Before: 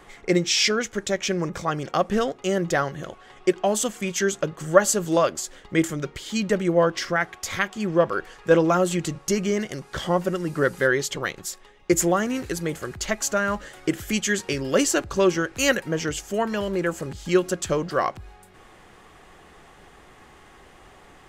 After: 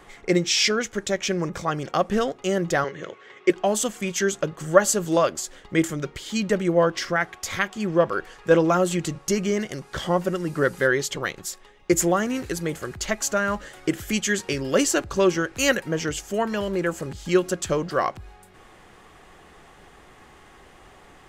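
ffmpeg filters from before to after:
ffmpeg -i in.wav -filter_complex "[0:a]asettb=1/sr,asplit=3[link_01][link_02][link_03];[link_01]atrim=end=2.844[link_04];[link_02]atrim=start=2.84:end=3.5,asetpts=PTS-STARTPTS,afade=type=in:duration=0.004:curve=qsin,afade=type=out:start_time=0.656:duration=0.004:curve=qsin,highpass=frequency=110:width=0.5412,highpass=frequency=110:width=1.3066,equalizer=frequency=140:width_type=q:width=4:gain=-9,equalizer=frequency=230:width_type=q:width=4:gain=-7,equalizer=frequency=440:width_type=q:width=4:gain=7,equalizer=frequency=740:width_type=q:width=4:gain=-10,equalizer=frequency=2100:width_type=q:width=4:gain=8,equalizer=frequency=4800:width_type=q:width=4:gain=-5,lowpass=frequency=6700:width=0.5412,lowpass=frequency=6700:width=1.3066[link_05];[link_03]atrim=start=3.496[link_06];[link_04][link_05]acrossfade=duration=0.004:curve1=hsin:curve2=qsin[link_07];[link_07][link_06]acrossfade=duration=0.004:curve1=qsin:curve2=hsin" out.wav

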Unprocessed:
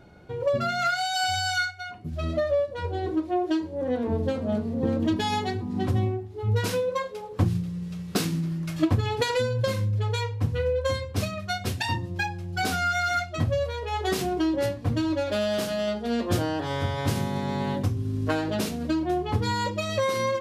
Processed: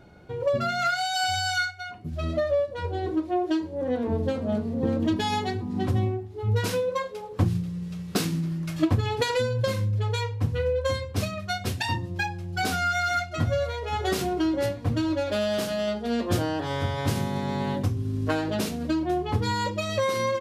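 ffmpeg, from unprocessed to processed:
ffmpeg -i in.wav -filter_complex "[0:a]asplit=2[link_01][link_02];[link_02]afade=type=in:start_time=12.79:duration=0.01,afade=type=out:start_time=13.83:duration=0.01,aecho=0:1:520|1040|1560|2080:0.158489|0.0792447|0.0396223|0.0198112[link_03];[link_01][link_03]amix=inputs=2:normalize=0" out.wav

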